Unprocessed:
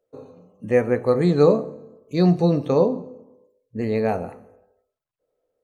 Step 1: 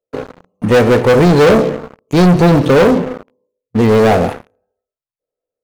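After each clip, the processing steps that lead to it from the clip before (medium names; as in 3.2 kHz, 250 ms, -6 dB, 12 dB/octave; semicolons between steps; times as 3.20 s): waveshaping leveller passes 5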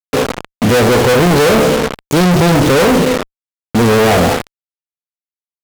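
fuzz box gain 37 dB, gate -35 dBFS; trim +4.5 dB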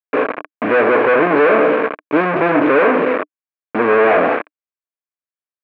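cabinet simulation 290–2400 Hz, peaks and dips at 300 Hz +10 dB, 440 Hz +5 dB, 630 Hz +8 dB, 1.1 kHz +9 dB, 1.6 kHz +9 dB, 2.4 kHz +9 dB; trim -7.5 dB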